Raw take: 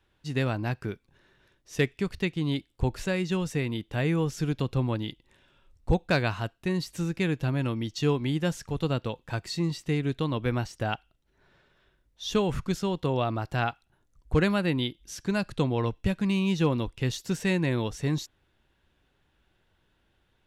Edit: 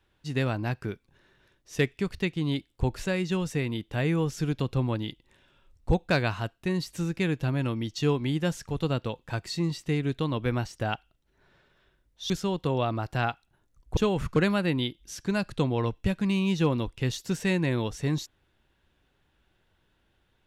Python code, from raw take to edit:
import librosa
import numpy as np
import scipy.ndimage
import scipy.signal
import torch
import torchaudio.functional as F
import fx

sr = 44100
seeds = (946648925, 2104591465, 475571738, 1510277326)

y = fx.edit(x, sr, fx.move(start_s=12.3, length_s=0.39, to_s=14.36), tone=tone)